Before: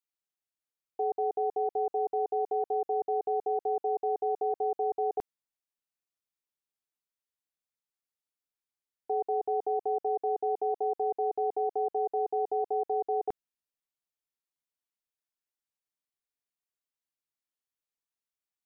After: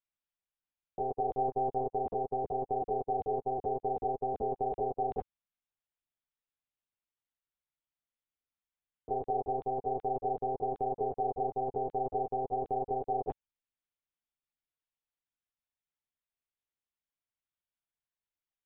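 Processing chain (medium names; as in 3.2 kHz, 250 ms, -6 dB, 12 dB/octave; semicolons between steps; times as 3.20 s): 1.31–1.82 s: comb 5.4 ms, depth 48%; monotone LPC vocoder at 8 kHz 130 Hz; trim -2 dB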